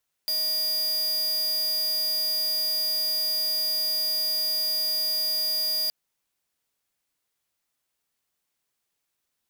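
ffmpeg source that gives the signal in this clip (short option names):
-f lavfi -i "aevalsrc='0.0501*(2*lt(mod(4830*t,1),0.5)-1)':d=5.62:s=44100"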